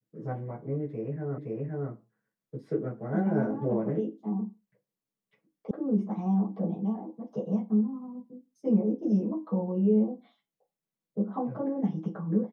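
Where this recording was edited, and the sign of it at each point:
0:01.38: the same again, the last 0.52 s
0:05.71: cut off before it has died away

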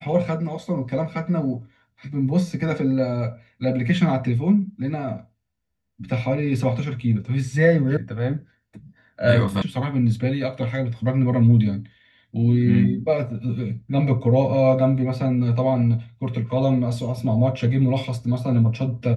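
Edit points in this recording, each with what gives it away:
0:07.97: cut off before it has died away
0:09.62: cut off before it has died away

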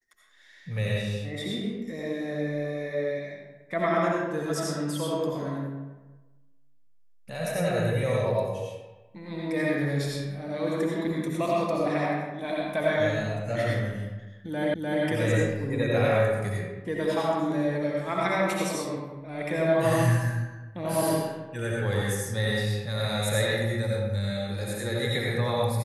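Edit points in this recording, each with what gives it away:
0:14.74: the same again, the last 0.3 s

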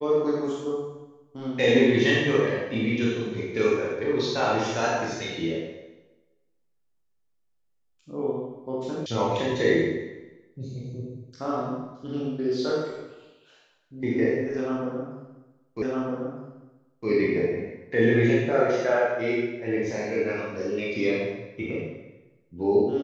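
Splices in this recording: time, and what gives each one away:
0:09.06: cut off before it has died away
0:15.82: the same again, the last 1.26 s

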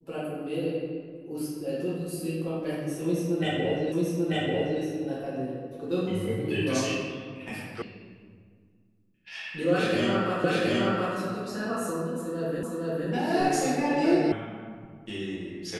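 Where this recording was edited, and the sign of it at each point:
0:03.92: the same again, the last 0.89 s
0:07.82: cut off before it has died away
0:10.44: the same again, the last 0.72 s
0:12.63: the same again, the last 0.46 s
0:14.32: cut off before it has died away

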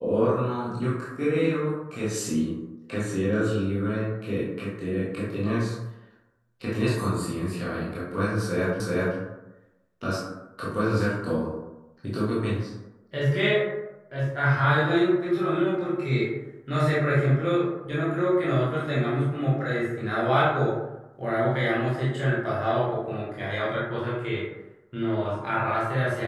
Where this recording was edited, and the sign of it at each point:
0:08.80: the same again, the last 0.38 s

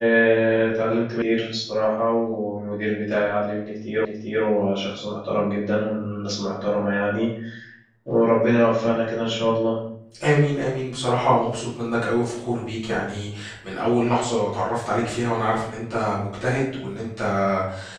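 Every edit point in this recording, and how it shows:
0:01.22: cut off before it has died away
0:04.05: the same again, the last 0.39 s

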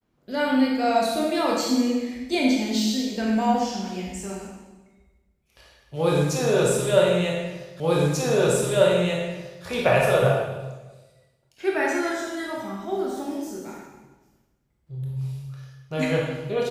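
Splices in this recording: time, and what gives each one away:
0:07.80: the same again, the last 1.84 s

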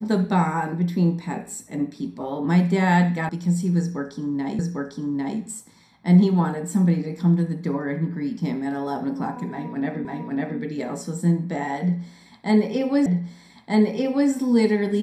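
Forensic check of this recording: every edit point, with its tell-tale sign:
0:03.29: cut off before it has died away
0:04.59: the same again, the last 0.8 s
0:10.05: the same again, the last 0.55 s
0:13.06: the same again, the last 1.24 s

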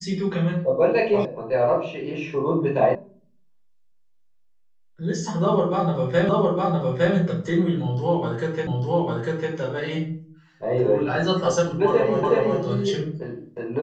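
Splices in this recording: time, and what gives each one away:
0:01.25: cut off before it has died away
0:02.95: cut off before it has died away
0:06.29: the same again, the last 0.86 s
0:08.67: the same again, the last 0.85 s
0:12.23: the same again, the last 0.37 s

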